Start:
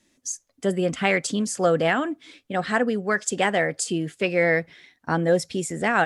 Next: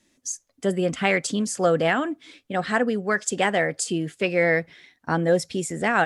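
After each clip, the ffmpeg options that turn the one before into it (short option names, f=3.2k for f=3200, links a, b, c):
-af anull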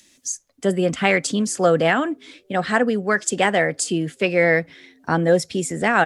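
-filter_complex "[0:a]acrossover=split=150|2200[a][b][c];[a]asplit=6[d][e][f][g][h][i];[e]adelay=418,afreqshift=100,volume=-19dB[j];[f]adelay=836,afreqshift=200,volume=-24dB[k];[g]adelay=1254,afreqshift=300,volume=-29.1dB[l];[h]adelay=1672,afreqshift=400,volume=-34.1dB[m];[i]adelay=2090,afreqshift=500,volume=-39.1dB[n];[d][j][k][l][m][n]amix=inputs=6:normalize=0[o];[c]acompressor=mode=upward:threshold=-50dB:ratio=2.5[p];[o][b][p]amix=inputs=3:normalize=0,volume=3.5dB"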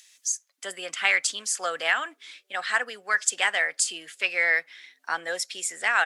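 -af "highpass=1.4k"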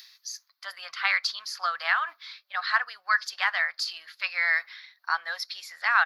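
-af "firequalizer=gain_entry='entry(120,0);entry(170,-26);entry(400,-25);entry(620,-5);entry(1100,10);entry(1700,4);entry(3000,-3);entry(4400,12);entry(8200,-28);entry(12000,4)':delay=0.05:min_phase=1,areverse,acompressor=mode=upward:threshold=-30dB:ratio=2.5,areverse,volume=-4.5dB"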